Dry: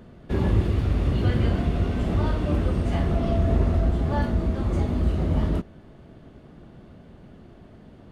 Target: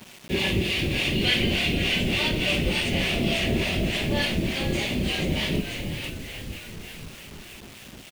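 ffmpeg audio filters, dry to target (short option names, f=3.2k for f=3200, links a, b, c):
-filter_complex "[0:a]highpass=f=220:p=1,highshelf=f=1.8k:t=q:w=3:g=11.5,aecho=1:1:5.3:0.31,asplit=2[a][b];[b]asplit=7[c][d][e][f][g][h][i];[c]adelay=489,afreqshift=-54,volume=-6dB[j];[d]adelay=978,afreqshift=-108,volume=-10.9dB[k];[e]adelay=1467,afreqshift=-162,volume=-15.8dB[l];[f]adelay=1956,afreqshift=-216,volume=-20.6dB[m];[g]adelay=2445,afreqshift=-270,volume=-25.5dB[n];[h]adelay=2934,afreqshift=-324,volume=-30.4dB[o];[i]adelay=3423,afreqshift=-378,volume=-35.3dB[p];[j][k][l][m][n][o][p]amix=inputs=7:normalize=0[q];[a][q]amix=inputs=2:normalize=0,acrossover=split=560[r][s];[r]aeval=exprs='val(0)*(1-0.7/2+0.7/2*cos(2*PI*3.4*n/s))':c=same[t];[s]aeval=exprs='val(0)*(1-0.7/2-0.7/2*cos(2*PI*3.4*n/s))':c=same[u];[t][u]amix=inputs=2:normalize=0,acrusher=bits=7:mix=0:aa=0.000001,volume=4.5dB"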